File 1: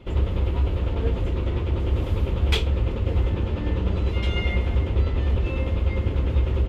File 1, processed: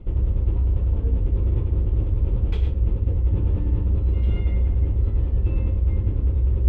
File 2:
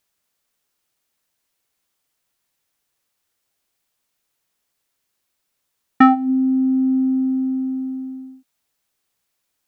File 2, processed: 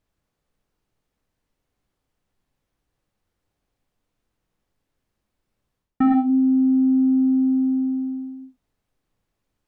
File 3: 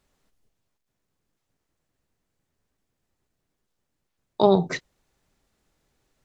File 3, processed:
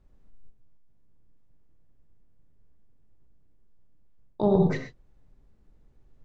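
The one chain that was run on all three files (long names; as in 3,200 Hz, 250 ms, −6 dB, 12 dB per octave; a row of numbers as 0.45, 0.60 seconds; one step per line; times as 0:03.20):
spectral tilt −4 dB per octave
reverb whose tail is shaped and stops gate 150 ms flat, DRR 5 dB
reversed playback
downward compressor 10 to 1, threshold −14 dBFS
reversed playback
normalise the peak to −9 dBFS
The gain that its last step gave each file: −2.5, −1.0, −3.0 decibels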